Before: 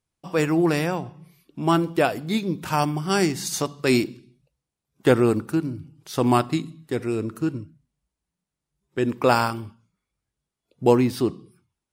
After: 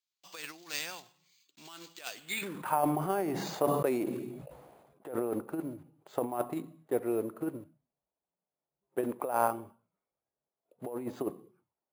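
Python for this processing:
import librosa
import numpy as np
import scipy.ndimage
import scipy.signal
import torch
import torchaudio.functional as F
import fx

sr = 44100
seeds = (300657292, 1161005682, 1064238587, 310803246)

y = fx.block_float(x, sr, bits=5)
y = fx.over_compress(y, sr, threshold_db=-22.0, ratio=-0.5)
y = fx.filter_sweep_bandpass(y, sr, from_hz=4500.0, to_hz=630.0, start_s=2.1, end_s=2.81, q=2.0)
y = np.repeat(scipy.signal.resample_poly(y, 1, 4), 4)[:len(y)]
y = fx.sustainer(y, sr, db_per_s=37.0, at=(2.27, 5.31))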